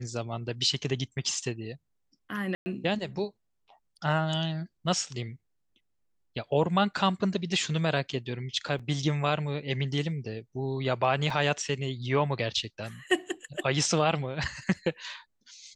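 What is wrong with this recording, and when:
2.55–2.66 s: dropout 110 ms
8.79–8.80 s: dropout 5.2 ms
11.30 s: dropout 3 ms

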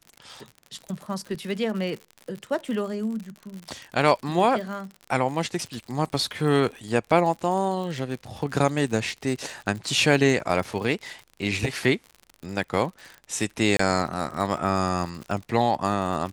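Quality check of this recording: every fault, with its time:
crackle 58 per s -32 dBFS
13.77–13.79 s: dropout 24 ms

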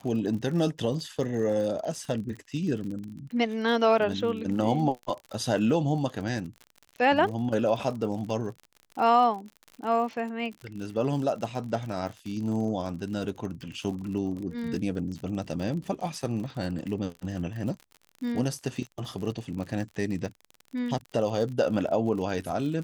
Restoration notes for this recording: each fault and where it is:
crackle 46 per s -35 dBFS

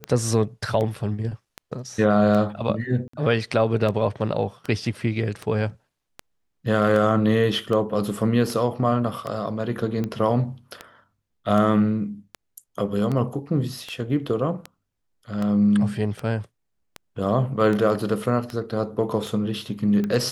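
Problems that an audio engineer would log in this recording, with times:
tick 78 rpm -16 dBFS
3.08–3.13 s: dropout 54 ms

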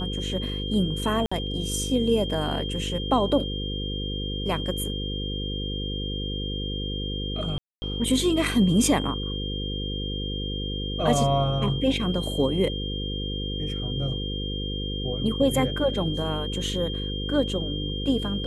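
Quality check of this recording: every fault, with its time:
buzz 50 Hz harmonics 10 -31 dBFS
whine 3.2 kHz -33 dBFS
1.26–1.31 s: dropout 55 ms
7.58–7.82 s: dropout 240 ms

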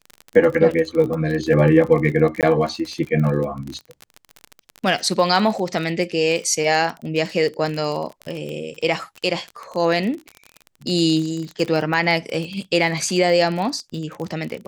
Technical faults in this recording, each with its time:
crackle 29 per s -25 dBFS
2.41–2.43 s: dropout 18 ms

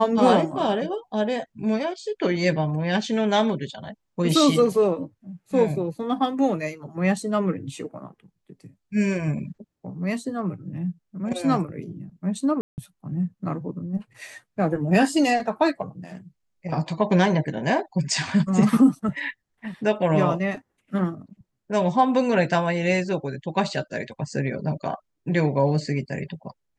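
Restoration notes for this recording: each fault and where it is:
12.61–12.78 s: dropout 169 ms

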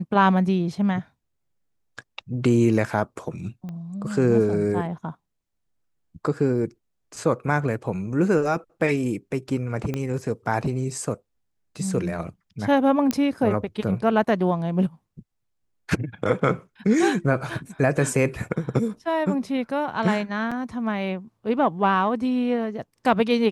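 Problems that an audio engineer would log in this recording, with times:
3.69 s: pop -25 dBFS
9.94 s: pop -15 dBFS
13.11 s: pop -9 dBFS
20.51–20.52 s: dropout 5.4 ms

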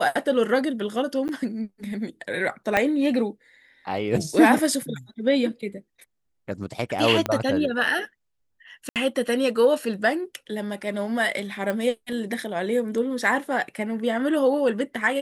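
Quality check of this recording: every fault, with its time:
1.28–1.29 s: dropout 9.8 ms
2.77 s: pop -7 dBFS
7.26 s: pop -10 dBFS
8.89–8.96 s: dropout 68 ms
11.70 s: pop -15 dBFS

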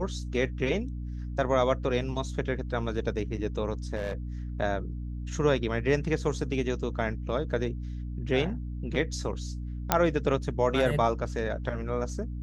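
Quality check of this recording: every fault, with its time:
hum 60 Hz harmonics 5 -35 dBFS
3.95–4.14 s: clipped -27.5 dBFS
9.92 s: pop -5 dBFS

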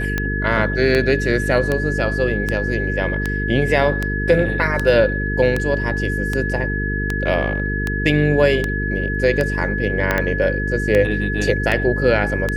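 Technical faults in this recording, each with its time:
buzz 50 Hz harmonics 9 -23 dBFS
tick 78 rpm -7 dBFS
whine 1.7 kHz -24 dBFS
10.11 s: pop -4 dBFS

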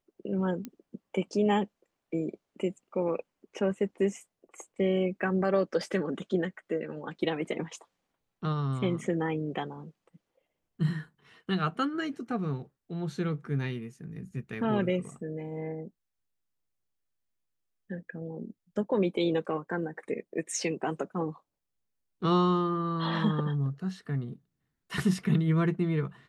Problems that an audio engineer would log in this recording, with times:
0.65 s: pop -23 dBFS

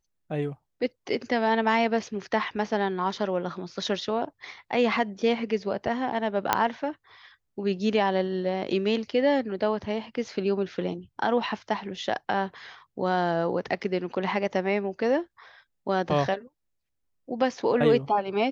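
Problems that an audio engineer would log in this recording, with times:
6.53 s: pop -5 dBFS

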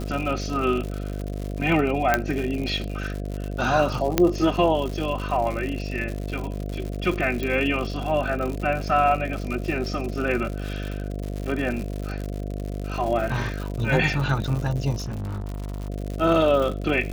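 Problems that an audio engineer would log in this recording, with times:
buzz 50 Hz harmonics 14 -30 dBFS
crackle 130 per s -29 dBFS
2.14 s: pop -5 dBFS
4.18 s: pop -3 dBFS
7.43 s: pop
14.96–15.90 s: clipped -27 dBFS

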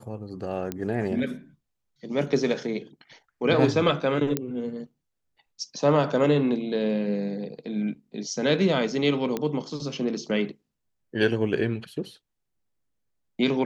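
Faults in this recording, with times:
0.72 s: pop -15 dBFS
4.37 s: pop -10 dBFS
9.37 s: pop -14 dBFS

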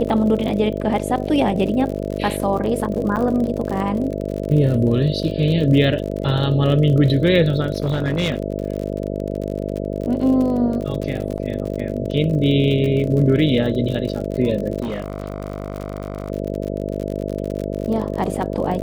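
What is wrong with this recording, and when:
buzz 50 Hz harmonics 13 -25 dBFS
crackle 56 per s -26 dBFS
3.16–3.17 s: dropout 7.5 ms
7.80–8.38 s: clipped -14.5 dBFS
11.38–11.39 s: dropout 6 ms
14.82–16.30 s: clipped -20.5 dBFS

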